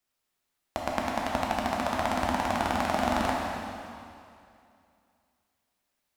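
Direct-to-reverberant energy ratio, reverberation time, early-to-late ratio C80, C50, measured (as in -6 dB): -3.0 dB, 2.5 s, 1.0 dB, -0.5 dB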